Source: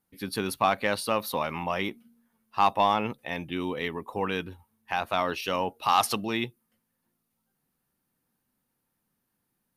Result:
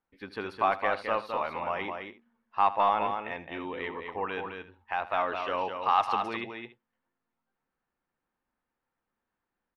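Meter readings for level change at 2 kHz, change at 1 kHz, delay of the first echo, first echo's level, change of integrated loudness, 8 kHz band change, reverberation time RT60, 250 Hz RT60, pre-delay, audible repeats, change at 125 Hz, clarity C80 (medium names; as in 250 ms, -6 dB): -2.5 dB, -0.5 dB, 81 ms, -16.5 dB, -2.0 dB, under -20 dB, no reverb, no reverb, no reverb, 3, -11.0 dB, no reverb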